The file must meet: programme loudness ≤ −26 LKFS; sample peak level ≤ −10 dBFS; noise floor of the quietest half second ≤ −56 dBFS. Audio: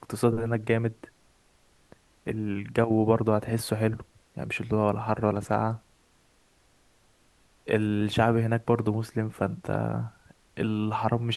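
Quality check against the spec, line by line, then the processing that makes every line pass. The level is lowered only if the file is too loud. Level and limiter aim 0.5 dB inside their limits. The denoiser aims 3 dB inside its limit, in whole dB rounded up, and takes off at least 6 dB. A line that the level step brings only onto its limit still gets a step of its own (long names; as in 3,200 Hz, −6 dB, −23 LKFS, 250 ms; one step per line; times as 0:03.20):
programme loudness −27.5 LKFS: in spec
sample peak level −6.5 dBFS: out of spec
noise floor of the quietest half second −64 dBFS: in spec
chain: brickwall limiter −10.5 dBFS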